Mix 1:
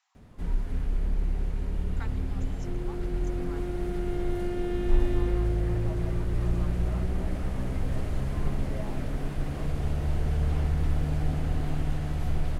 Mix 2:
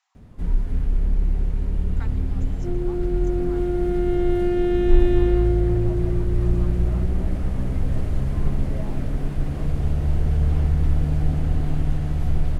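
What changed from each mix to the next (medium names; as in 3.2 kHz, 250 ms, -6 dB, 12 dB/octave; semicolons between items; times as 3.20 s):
second sound +7.5 dB; master: add bass shelf 380 Hz +7 dB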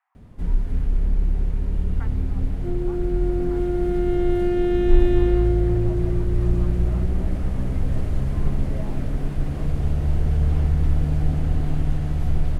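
speech: add low-pass 2 kHz 24 dB/octave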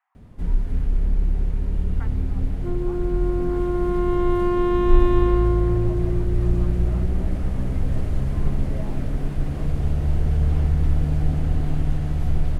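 second sound: remove Butterworth band-stop 1.1 kHz, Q 1.7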